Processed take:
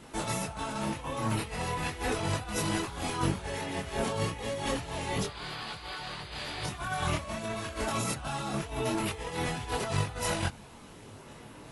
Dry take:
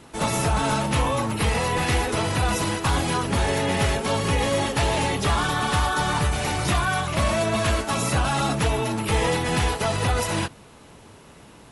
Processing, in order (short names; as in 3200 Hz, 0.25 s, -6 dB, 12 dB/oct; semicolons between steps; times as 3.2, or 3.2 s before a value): painted sound noise, 5.27–6.64, 300–5000 Hz -23 dBFS; negative-ratio compressor -26 dBFS, ratio -0.5; chorus voices 4, 0.32 Hz, delay 23 ms, depth 4.2 ms; gain -3.5 dB